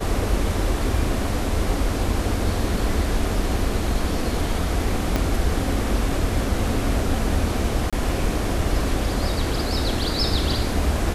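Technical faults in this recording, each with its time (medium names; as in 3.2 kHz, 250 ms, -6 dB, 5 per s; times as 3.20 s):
5.16 s: pop -8 dBFS
7.90–7.93 s: dropout 26 ms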